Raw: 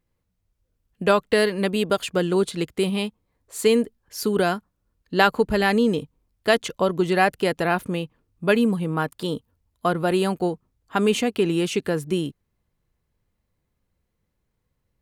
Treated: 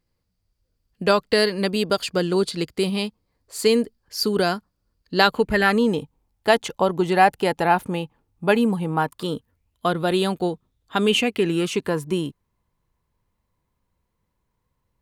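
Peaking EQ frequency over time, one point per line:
peaking EQ +12 dB 0.27 oct
5.20 s 4.7 kHz
5.88 s 840 Hz
9.01 s 840 Hz
9.88 s 3.6 kHz
11.03 s 3.6 kHz
11.79 s 990 Hz

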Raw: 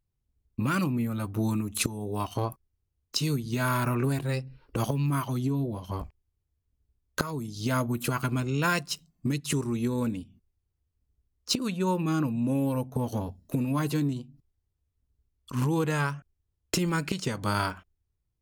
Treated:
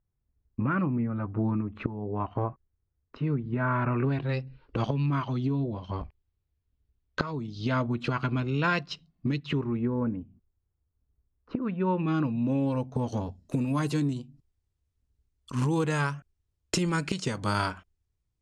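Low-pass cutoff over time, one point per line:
low-pass 24 dB/octave
3.67 s 1.9 kHz
4.37 s 4.3 kHz
9.35 s 4.3 kHz
9.95 s 1.6 kHz
11.55 s 1.6 kHz
12.20 s 4.4 kHz
13.66 s 9.2 kHz

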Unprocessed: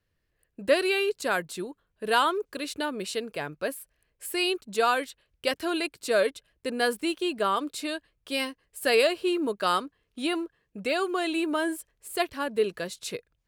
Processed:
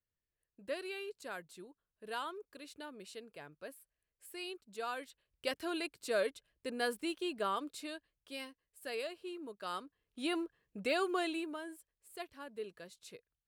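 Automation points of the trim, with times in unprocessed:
4.78 s -17.5 dB
5.46 s -9.5 dB
7.51 s -9.5 dB
8.80 s -18.5 dB
9.53 s -18.5 dB
10.40 s -6 dB
11.20 s -6 dB
11.63 s -18 dB

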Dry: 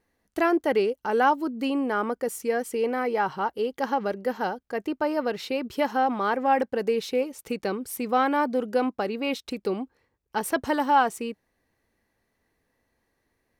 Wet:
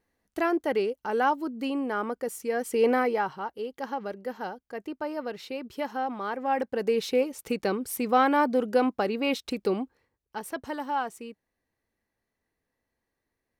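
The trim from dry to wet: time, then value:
2.50 s -3.5 dB
2.91 s +5 dB
3.38 s -7 dB
6.34 s -7 dB
7.05 s +1 dB
9.78 s +1 dB
10.43 s -9 dB

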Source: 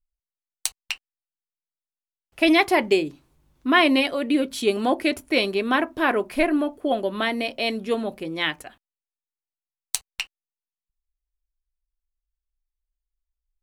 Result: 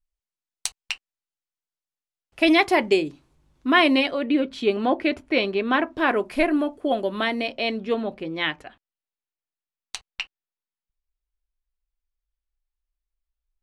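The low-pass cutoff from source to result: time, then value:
3.84 s 8.9 kHz
4.31 s 3.4 kHz
5.59 s 3.4 kHz
6.22 s 8.9 kHz
7.15 s 8.9 kHz
7.72 s 4 kHz

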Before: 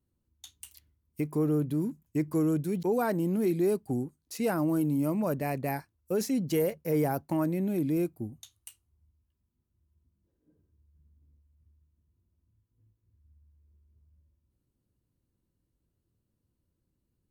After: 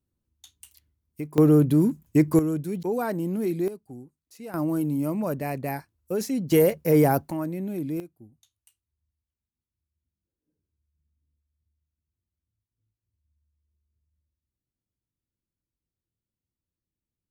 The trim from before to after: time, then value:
-2 dB
from 1.38 s +10 dB
from 2.39 s +0.5 dB
from 3.68 s -11 dB
from 4.54 s +1.5 dB
from 6.52 s +8.5 dB
from 7.31 s -1.5 dB
from 8.00 s -13 dB

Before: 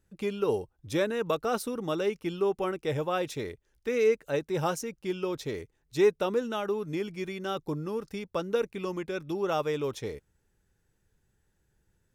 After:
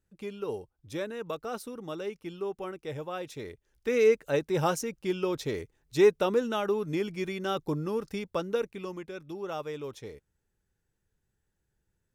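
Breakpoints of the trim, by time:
3.27 s -7 dB
3.93 s +2 dB
8.18 s +2 dB
9.15 s -7 dB

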